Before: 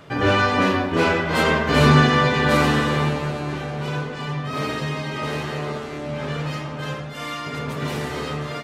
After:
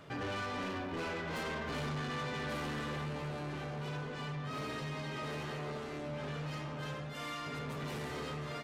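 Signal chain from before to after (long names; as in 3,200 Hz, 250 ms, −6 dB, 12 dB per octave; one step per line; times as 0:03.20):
downward compressor 2 to 1, threshold −26 dBFS, peak gain reduction 9 dB
soft clipping −26.5 dBFS, distortion −10 dB
level −8.5 dB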